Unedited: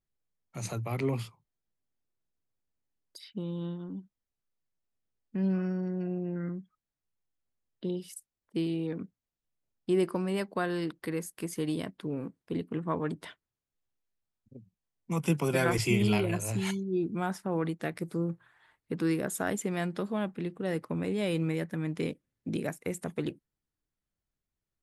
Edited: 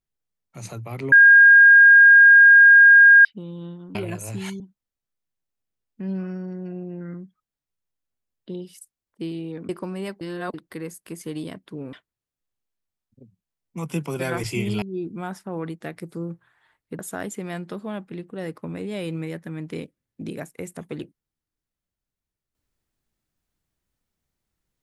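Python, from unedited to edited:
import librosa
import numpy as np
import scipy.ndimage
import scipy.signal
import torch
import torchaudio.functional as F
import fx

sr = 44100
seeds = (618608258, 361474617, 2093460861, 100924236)

y = fx.edit(x, sr, fx.bleep(start_s=1.12, length_s=2.13, hz=1620.0, db=-7.0),
    fx.cut(start_s=9.04, length_s=0.97),
    fx.reverse_span(start_s=10.53, length_s=0.33),
    fx.cut(start_s=12.25, length_s=1.02),
    fx.move(start_s=16.16, length_s=0.65, to_s=3.95),
    fx.cut(start_s=18.98, length_s=0.28), tone=tone)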